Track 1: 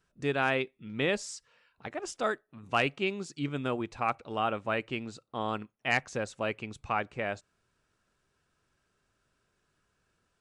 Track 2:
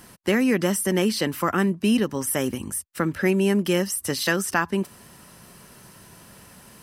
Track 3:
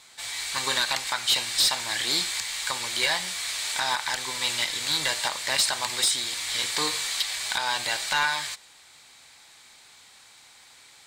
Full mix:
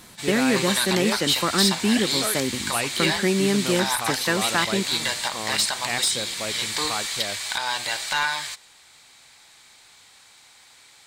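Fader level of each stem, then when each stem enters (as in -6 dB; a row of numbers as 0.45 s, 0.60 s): -0.5 dB, -1.0 dB, +0.5 dB; 0.00 s, 0.00 s, 0.00 s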